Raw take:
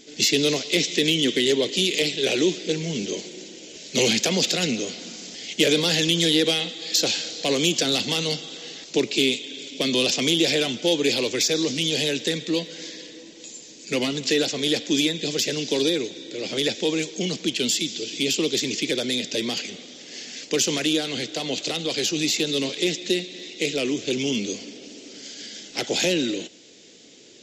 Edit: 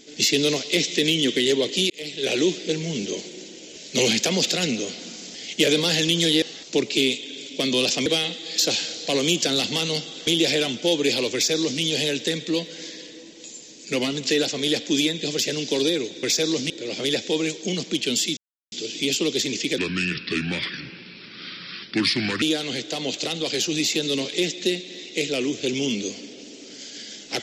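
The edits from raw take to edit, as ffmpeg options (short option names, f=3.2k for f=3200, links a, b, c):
-filter_complex "[0:a]asplit=10[a][b][c][d][e][f][g][h][i][j];[a]atrim=end=1.9,asetpts=PTS-STARTPTS,afade=t=out:st=1.896:d=0.004:c=hsin[k];[b]atrim=start=1.9:end=6.422,asetpts=PTS-STARTPTS,afade=t=in:d=0.45[l];[c]atrim=start=8.628:end=10.272[m];[d]atrim=start=6.418:end=8.632[n];[e]atrim=start=10.268:end=16.232[o];[f]atrim=start=11.338:end=11.812[p];[g]atrim=start=16.228:end=17.9,asetpts=PTS-STARTPTS,afade=t=out:st=1.668:d=0.004:c=hsin,apad=pad_dur=0.35[q];[h]atrim=start=17.9:end=18.964,asetpts=PTS-STARTPTS,afade=t=in:d=0.004:c=hsin[r];[i]atrim=start=18.96:end=20.86,asetpts=PTS-STARTPTS,asetrate=31752,aresample=44100[s];[j]atrim=start=20.856[t];[k][l]concat=n=2:v=0:a=1[u];[u][m]acrossfade=d=0.004:c1=hsin:c2=hsin[v];[v][n]acrossfade=d=0.004:c1=hsin:c2=hsin[w];[w][o]acrossfade=d=0.004:c1=hsin:c2=hsin[x];[x][p]acrossfade=d=0.004:c1=hsin:c2=hsin[y];[q][r]concat=n=2:v=0:a=1[z];[y][z]acrossfade=d=0.004:c1=hsin:c2=hsin[aa];[aa][s]acrossfade=d=0.004:c1=hsin:c2=hsin[ab];[ab][t]acrossfade=d=0.004:c1=hsin:c2=hsin"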